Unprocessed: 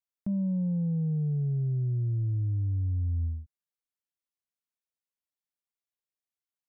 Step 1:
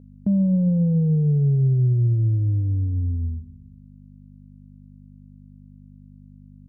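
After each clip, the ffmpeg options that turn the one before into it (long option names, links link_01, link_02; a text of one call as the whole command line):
ffmpeg -i in.wav -af "aeval=exprs='val(0)+0.00316*(sin(2*PI*50*n/s)+sin(2*PI*2*50*n/s)/2+sin(2*PI*3*50*n/s)/3+sin(2*PI*4*50*n/s)/4+sin(2*PI*5*50*n/s)/5)':channel_layout=same,equalizer=frequency=125:width_type=o:width=1:gain=8,equalizer=frequency=250:width_type=o:width=1:gain=8,equalizer=frequency=500:width_type=o:width=1:gain=12,aecho=1:1:133|266|399|532:0.0944|0.051|0.0275|0.0149" out.wav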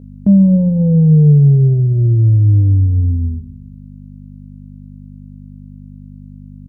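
ffmpeg -i in.wav -filter_complex "[0:a]asplit=2[link_01][link_02];[link_02]adelay=20,volume=-9dB[link_03];[link_01][link_03]amix=inputs=2:normalize=0,volume=9dB" out.wav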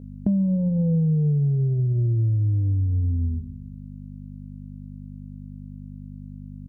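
ffmpeg -i in.wav -af "acompressor=threshold=-16dB:ratio=6,volume=-3.5dB" out.wav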